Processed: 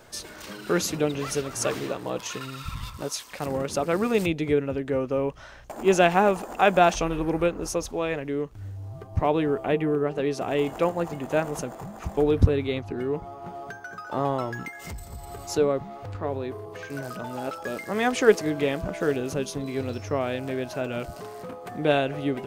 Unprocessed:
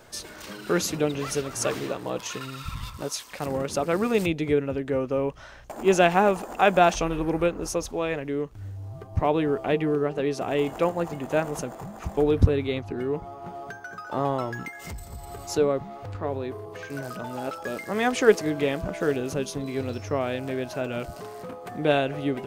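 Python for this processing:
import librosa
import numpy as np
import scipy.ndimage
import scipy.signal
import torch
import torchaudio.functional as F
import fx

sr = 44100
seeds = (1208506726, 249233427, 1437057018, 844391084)

y = fx.peak_eq(x, sr, hz=4900.0, db=fx.line((9.46, -3.0), (10.06, -11.5)), octaves=0.89, at=(9.46, 10.06), fade=0.02)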